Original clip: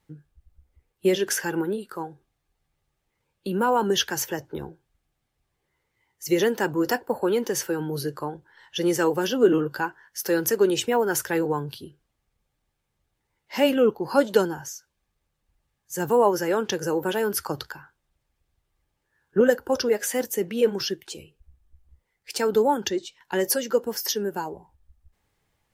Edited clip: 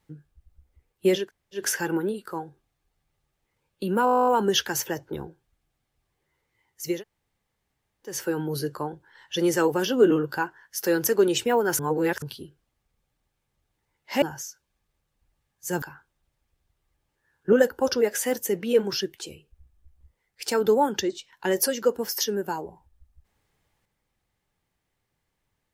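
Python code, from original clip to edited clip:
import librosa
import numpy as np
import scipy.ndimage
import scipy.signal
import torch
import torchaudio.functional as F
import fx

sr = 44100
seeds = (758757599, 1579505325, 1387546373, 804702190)

y = fx.edit(x, sr, fx.insert_room_tone(at_s=1.23, length_s=0.36, crossfade_s=0.16),
    fx.stutter(start_s=3.69, slice_s=0.02, count=12),
    fx.room_tone_fill(start_s=6.34, length_s=1.22, crossfade_s=0.24),
    fx.reverse_span(start_s=11.21, length_s=0.43),
    fx.cut(start_s=13.64, length_s=0.85),
    fx.cut(start_s=16.09, length_s=1.61), tone=tone)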